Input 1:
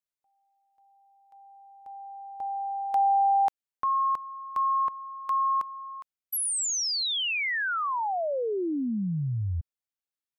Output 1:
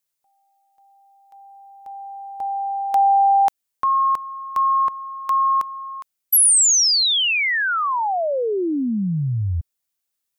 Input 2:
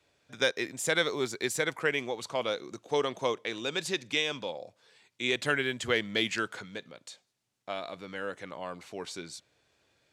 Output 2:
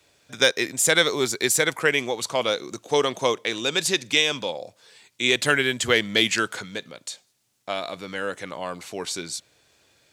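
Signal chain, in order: treble shelf 5 kHz +9.5 dB; trim +7 dB

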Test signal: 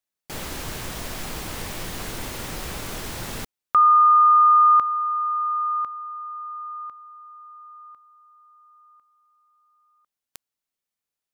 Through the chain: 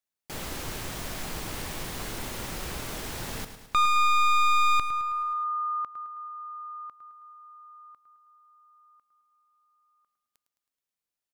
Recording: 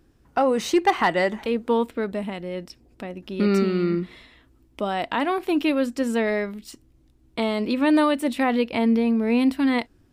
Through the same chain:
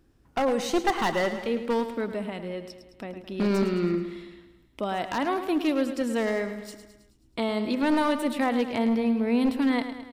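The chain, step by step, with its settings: one-sided wavefolder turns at -16.5 dBFS; dynamic bell 2.5 kHz, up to -6 dB, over -39 dBFS, Q 4.4; feedback delay 107 ms, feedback 56%, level -10.5 dB; trim -3.5 dB

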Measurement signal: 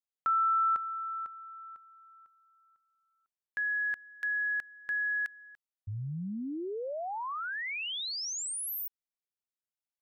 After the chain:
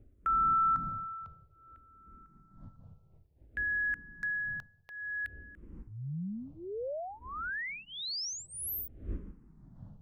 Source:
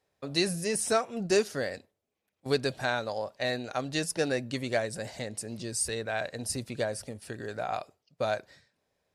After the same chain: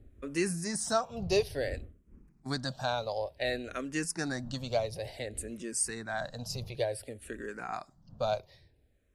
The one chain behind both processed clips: wind noise 130 Hz -47 dBFS; barber-pole phaser -0.56 Hz

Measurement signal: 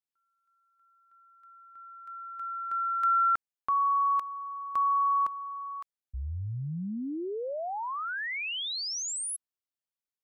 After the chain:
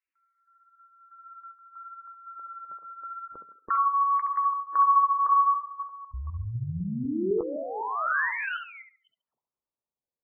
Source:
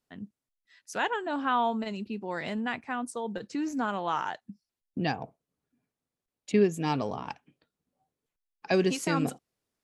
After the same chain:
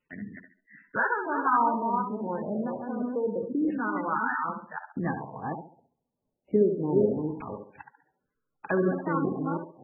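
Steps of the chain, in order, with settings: chunks repeated in reverse 252 ms, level -4 dB; peaking EQ 720 Hz -9.5 dB 0.35 oct; in parallel at +1 dB: compression 10:1, threshold -36 dBFS; on the sum: tape echo 69 ms, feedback 38%, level -6 dB, low-pass 2.6 kHz; LFO low-pass saw down 0.27 Hz 420–2400 Hz; trim -3.5 dB; MP3 8 kbps 22.05 kHz

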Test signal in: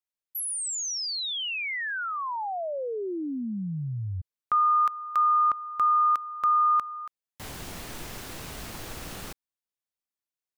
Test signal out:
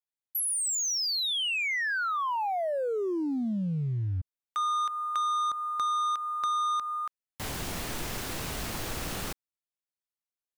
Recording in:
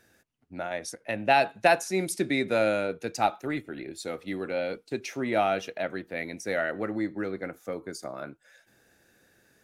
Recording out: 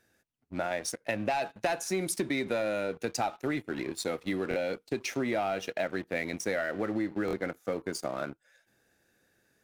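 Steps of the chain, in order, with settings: waveshaping leveller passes 2; compression 10:1, threshold -24 dBFS; buffer glitch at 4.49/7.26 s, samples 1024, times 2; trim -3 dB

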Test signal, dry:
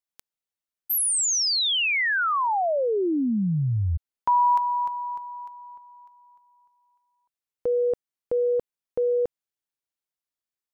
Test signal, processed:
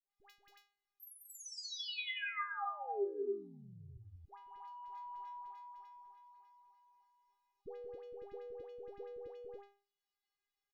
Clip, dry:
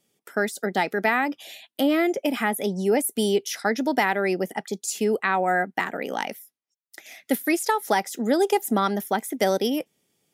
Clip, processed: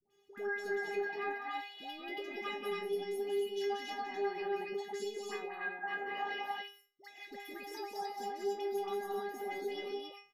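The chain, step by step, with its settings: comb 1.1 ms, depth 36%; in parallel at +2 dB: peak limiter -16.5 dBFS; on the sum: compressor with a negative ratio -20 dBFS, ratio -1; boxcar filter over 5 samples; inharmonic resonator 400 Hz, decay 0.37 s, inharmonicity 0.002; phase dispersion highs, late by 104 ms, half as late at 810 Hz; on a send: loudspeakers at several distances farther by 63 m -5 dB, 95 m -2 dB; on the sum: three bands compressed up and down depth 40%; trim -4 dB

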